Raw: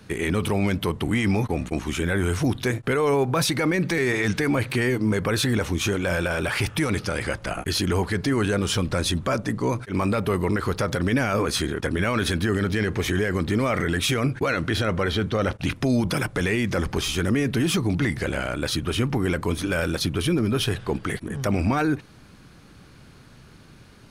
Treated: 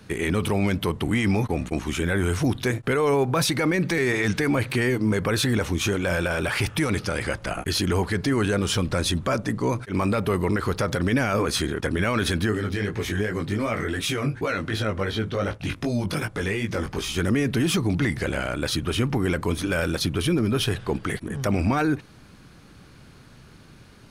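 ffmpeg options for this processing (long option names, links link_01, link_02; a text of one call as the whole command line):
ffmpeg -i in.wav -filter_complex "[0:a]asplit=3[link_01][link_02][link_03];[link_01]afade=type=out:start_time=12.5:duration=0.02[link_04];[link_02]flanger=delay=17.5:depth=3.3:speed=2.7,afade=type=in:start_time=12.5:duration=0.02,afade=type=out:start_time=17.15:duration=0.02[link_05];[link_03]afade=type=in:start_time=17.15:duration=0.02[link_06];[link_04][link_05][link_06]amix=inputs=3:normalize=0" out.wav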